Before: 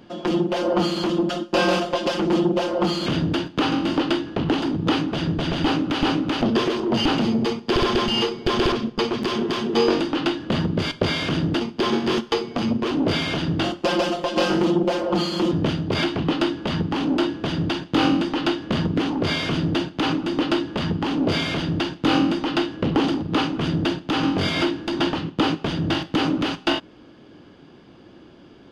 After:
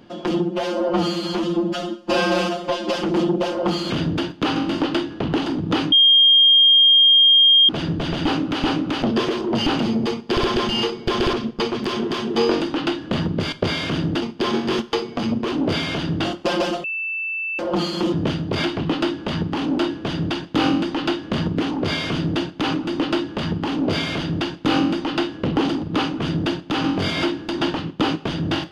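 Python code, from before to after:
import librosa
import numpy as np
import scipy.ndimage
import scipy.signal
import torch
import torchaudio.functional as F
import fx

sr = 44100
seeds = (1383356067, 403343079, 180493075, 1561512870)

y = fx.edit(x, sr, fx.stretch_span(start_s=0.42, length_s=1.68, factor=1.5),
    fx.insert_tone(at_s=5.08, length_s=1.77, hz=3220.0, db=-9.5),
    fx.bleep(start_s=14.23, length_s=0.75, hz=2650.0, db=-23.0), tone=tone)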